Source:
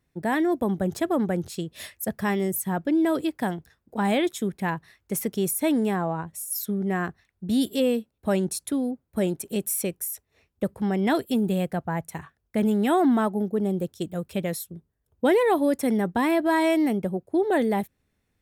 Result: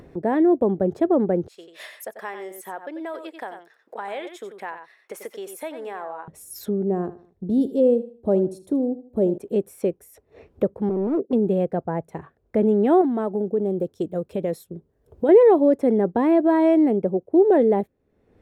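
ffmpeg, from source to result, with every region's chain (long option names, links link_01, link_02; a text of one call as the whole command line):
ffmpeg -i in.wav -filter_complex "[0:a]asettb=1/sr,asplit=3[link_01][link_02][link_03];[link_01]atrim=end=1.484[link_04];[link_02]atrim=start=1.48:end=6.28,asetpts=PTS-STARTPTS,afade=type=in:duration=0.004:curve=qsin,afade=type=out:start_time=4.796:duration=0.004:curve=qsin,highpass=1200,aecho=1:1:90:0.316,atrim=end_sample=211680[link_05];[link_03]atrim=start=6.276[link_06];[link_04][link_05]acrossfade=duration=0.004:curve1=hsin:curve2=qsin[link_07];[link_07][link_06]acrossfade=duration=0.004:curve1=qsin:curve2=hsin,asettb=1/sr,asplit=3[link_08][link_09][link_10];[link_08]atrim=end=6.844[link_11];[link_09]atrim=start=6.84:end=9.38,asetpts=PTS-STARTPTS,afade=type=in:duration=0.004:curve=qsin,afade=type=out:start_time=2.536:duration=0.004:curve=qsin,equalizer=frequency=2000:width=0.86:gain=-14,aecho=1:1:77|154|231:0.178|0.0533|0.016,atrim=end_sample=112014[link_12];[link_10]atrim=start=9.376[link_13];[link_11][link_12]acrossfade=duration=0.004:curve1=hsin:curve2=qsin[link_14];[link_14][link_13]acrossfade=duration=0.004:curve1=qsin:curve2=hsin,asettb=1/sr,asplit=3[link_15][link_16][link_17];[link_15]atrim=end=10.894[link_18];[link_16]atrim=start=10.89:end=11.33,asetpts=PTS-STARTPTS,afade=type=in:duration=0.004:curve=qsin,afade=type=out:start_time=0.436:duration=0.004:curve=qsin,asuperpass=centerf=310:order=4:qfactor=0.83,asoftclip=type=hard:threshold=-24.5dB[link_19];[link_17]atrim=start=11.326[link_20];[link_18][link_19]acrossfade=duration=0.004:curve1=hsin:curve2=qsin[link_21];[link_21][link_20]acrossfade=duration=0.004:curve1=qsin:curve2=hsin,asettb=1/sr,asplit=3[link_22][link_23][link_24];[link_22]atrim=end=13.014[link_25];[link_23]atrim=start=13.01:end=15.29,asetpts=PTS-STARTPTS,afade=type=in:duration=0.004:curve=qsin,afade=type=out:start_time=2.276:duration=0.004:curve=qsin,acompressor=threshold=-24dB:ratio=5:attack=3.2:release=140:knee=1:detection=peak,highshelf=frequency=3900:gain=8.5[link_26];[link_24]atrim=start=15.286[link_27];[link_25][link_26]acrossfade=duration=0.004:curve1=hsin:curve2=qsin[link_28];[link_28][link_27]acrossfade=duration=0.004:curve1=qsin:curve2=hsin,lowpass=frequency=1200:poles=1,equalizer=frequency=450:width=0.85:gain=12.5,acompressor=mode=upward:threshold=-24dB:ratio=2.5,volume=-3dB" out.wav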